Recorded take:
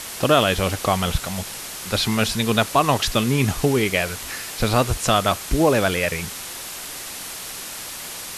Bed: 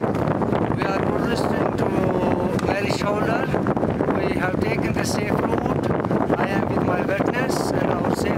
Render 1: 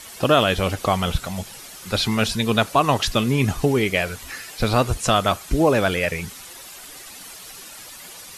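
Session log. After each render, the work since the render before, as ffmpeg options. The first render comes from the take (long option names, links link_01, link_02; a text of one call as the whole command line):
ffmpeg -i in.wav -af "afftdn=noise_reduction=10:noise_floor=-34" out.wav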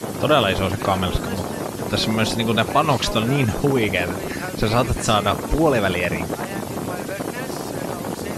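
ffmpeg -i in.wav -i bed.wav -filter_complex "[1:a]volume=-6.5dB[link_01];[0:a][link_01]amix=inputs=2:normalize=0" out.wav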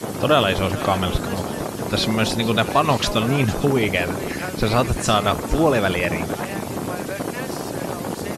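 ffmpeg -i in.wav -af "aecho=1:1:454:0.15" out.wav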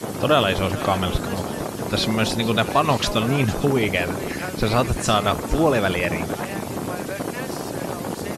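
ffmpeg -i in.wav -af "volume=-1dB" out.wav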